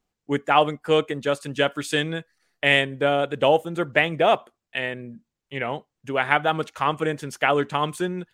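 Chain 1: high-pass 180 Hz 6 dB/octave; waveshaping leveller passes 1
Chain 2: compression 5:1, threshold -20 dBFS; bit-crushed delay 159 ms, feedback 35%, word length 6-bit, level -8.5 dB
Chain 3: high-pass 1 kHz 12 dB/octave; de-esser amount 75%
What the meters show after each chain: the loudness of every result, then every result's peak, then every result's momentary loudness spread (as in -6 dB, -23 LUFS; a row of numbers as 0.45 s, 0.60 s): -20.0 LUFS, -27.0 LUFS, -30.0 LUFS; -1.0 dBFS, -5.5 dBFS, -9.5 dBFS; 11 LU, 6 LU, 9 LU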